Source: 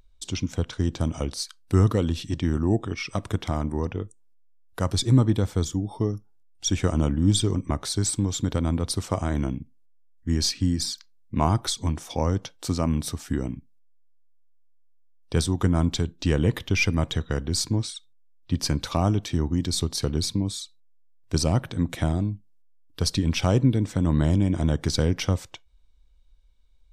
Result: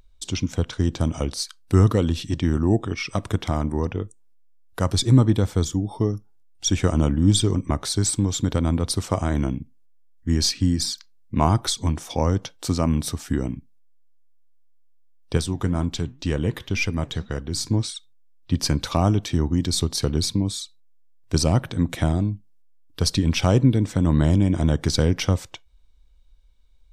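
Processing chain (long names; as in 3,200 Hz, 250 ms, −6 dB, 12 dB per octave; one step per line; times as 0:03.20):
0:15.37–0:17.68: flanger 2 Hz, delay 1.5 ms, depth 7 ms, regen +86%
level +3 dB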